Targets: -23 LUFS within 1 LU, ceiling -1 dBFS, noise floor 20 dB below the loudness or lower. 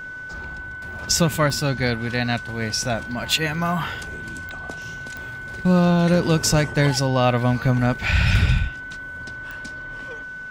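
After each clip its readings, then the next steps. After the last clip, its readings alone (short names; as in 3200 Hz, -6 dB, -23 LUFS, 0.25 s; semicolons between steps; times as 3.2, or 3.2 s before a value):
clicks 4; steady tone 1500 Hz; tone level -32 dBFS; loudness -21.0 LUFS; peak -5.5 dBFS; loudness target -23.0 LUFS
-> de-click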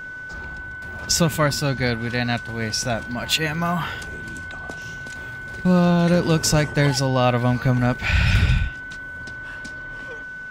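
clicks 0; steady tone 1500 Hz; tone level -32 dBFS
-> notch 1500 Hz, Q 30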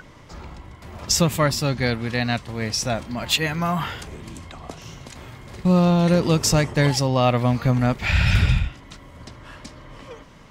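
steady tone none; loudness -21.0 LUFS; peak -5.0 dBFS; loudness target -23.0 LUFS
-> gain -2 dB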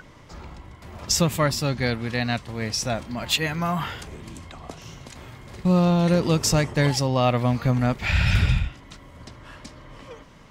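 loudness -23.0 LUFS; peak -7.0 dBFS; noise floor -48 dBFS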